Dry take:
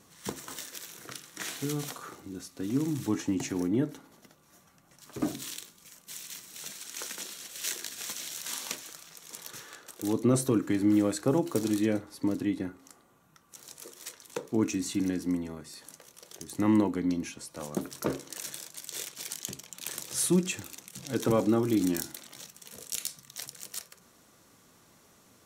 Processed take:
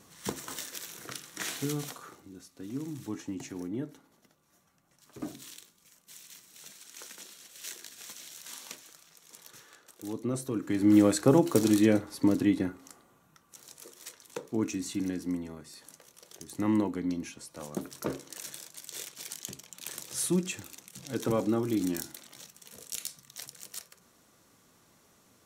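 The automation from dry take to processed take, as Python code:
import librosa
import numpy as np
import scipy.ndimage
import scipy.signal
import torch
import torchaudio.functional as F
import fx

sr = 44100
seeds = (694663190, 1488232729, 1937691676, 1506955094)

y = fx.gain(x, sr, db=fx.line((1.57, 1.5), (2.35, -8.0), (10.49, -8.0), (10.98, 4.5), (12.55, 4.5), (13.69, -3.0)))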